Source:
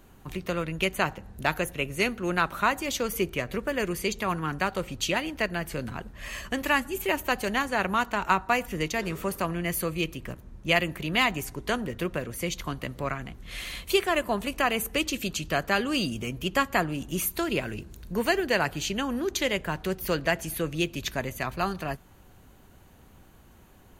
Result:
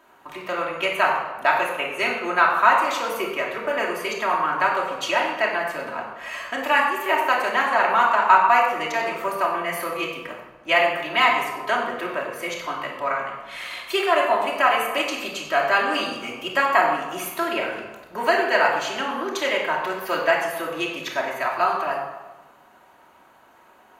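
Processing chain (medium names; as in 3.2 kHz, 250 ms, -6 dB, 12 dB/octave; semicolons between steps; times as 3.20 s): high-pass 560 Hz 6 dB/octave; peaking EQ 1 kHz +15 dB 3 oct; reverberation RT60 1.2 s, pre-delay 3 ms, DRR -3 dB; trim -8 dB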